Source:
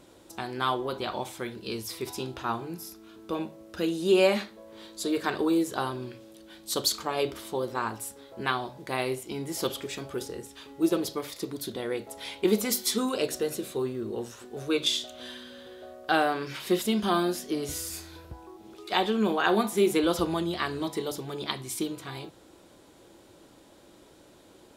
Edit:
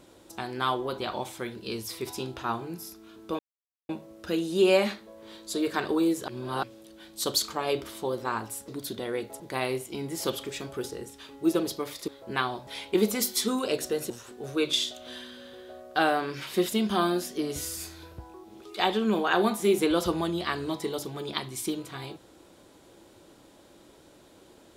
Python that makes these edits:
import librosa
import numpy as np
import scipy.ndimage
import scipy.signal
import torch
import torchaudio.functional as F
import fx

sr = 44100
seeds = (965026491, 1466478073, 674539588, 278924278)

y = fx.edit(x, sr, fx.insert_silence(at_s=3.39, length_s=0.5),
    fx.reverse_span(start_s=5.78, length_s=0.35),
    fx.swap(start_s=8.18, length_s=0.59, other_s=11.45, other_length_s=0.72),
    fx.cut(start_s=13.6, length_s=0.63), tone=tone)